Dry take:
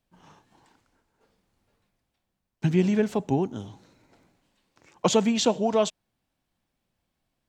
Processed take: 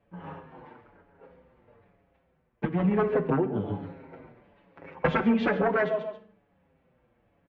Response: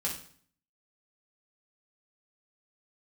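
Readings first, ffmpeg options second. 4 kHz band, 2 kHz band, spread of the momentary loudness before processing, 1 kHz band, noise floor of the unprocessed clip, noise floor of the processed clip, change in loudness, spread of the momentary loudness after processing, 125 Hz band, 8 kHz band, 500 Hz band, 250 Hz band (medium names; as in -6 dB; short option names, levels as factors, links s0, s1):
-13.5 dB, +7.0 dB, 8 LU, 0.0 dB, -81 dBFS, -70 dBFS, -2.5 dB, 19 LU, -2.0 dB, under -35 dB, -1.5 dB, -2.0 dB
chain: -filter_complex "[0:a]equalizer=f=490:t=o:w=0.73:g=7.5,aecho=1:1:137|274:0.237|0.0474,aeval=exprs='0.158*(abs(mod(val(0)/0.158+3,4)-2)-1)':c=same,lowpass=f=2300:w=0.5412,lowpass=f=2300:w=1.3066,acontrast=67,asplit=2[s0][s1];[1:a]atrim=start_sample=2205[s2];[s1][s2]afir=irnorm=-1:irlink=0,volume=0.316[s3];[s0][s3]amix=inputs=2:normalize=0,acompressor=threshold=0.0562:ratio=6,highpass=43,asplit=2[s4][s5];[s5]adelay=6.5,afreqshift=-1.1[s6];[s4][s6]amix=inputs=2:normalize=1,volume=1.78"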